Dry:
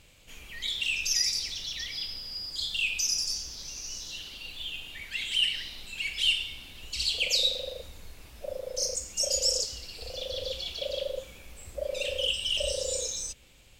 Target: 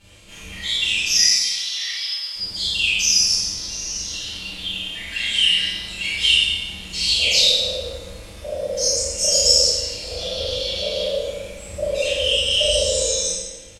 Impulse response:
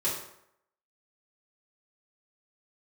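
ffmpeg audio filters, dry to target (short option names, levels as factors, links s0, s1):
-filter_complex "[0:a]asettb=1/sr,asplit=3[s0][s1][s2];[s0]atrim=end=1.194[s3];[s1]atrim=start=1.19:end=2.36,asetpts=PTS-STARTPTS,afade=t=in:d=0.004:c=qsin,afade=t=out:st=1.166:d=0.004:c=qsin,highpass=1100[s4];[s2]atrim=start=2.356[s5];[s3][s4]acrossfade=d=0.004:c1=hsin:c2=qsin[s6];[s6][s5]acrossfade=d=0.004:c1=qsin:c2=hsin,aecho=1:1:27|38:0.596|0.668[s7];[1:a]atrim=start_sample=2205,asetrate=23814,aresample=44100[s8];[s7][s8]afir=irnorm=-1:irlink=0,volume=0.668"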